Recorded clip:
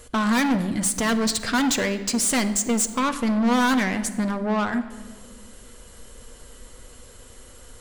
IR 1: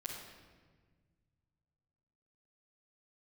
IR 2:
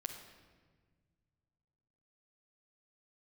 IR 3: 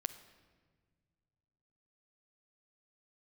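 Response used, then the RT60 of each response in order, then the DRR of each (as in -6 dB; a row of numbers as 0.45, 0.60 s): 3; 1.5, 1.5, 1.6 s; -8.5, 1.0, 8.5 dB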